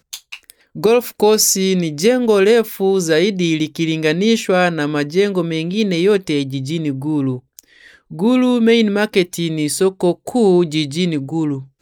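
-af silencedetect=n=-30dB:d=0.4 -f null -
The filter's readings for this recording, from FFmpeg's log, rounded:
silence_start: 7.59
silence_end: 8.11 | silence_duration: 0.52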